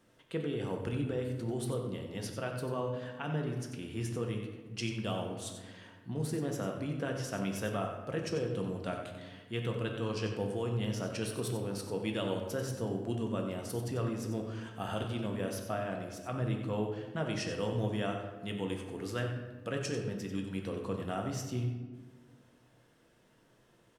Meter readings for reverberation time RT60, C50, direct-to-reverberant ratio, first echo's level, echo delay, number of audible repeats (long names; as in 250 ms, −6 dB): 1.4 s, 4.5 dB, 1.5 dB, −9.0 dB, 92 ms, 1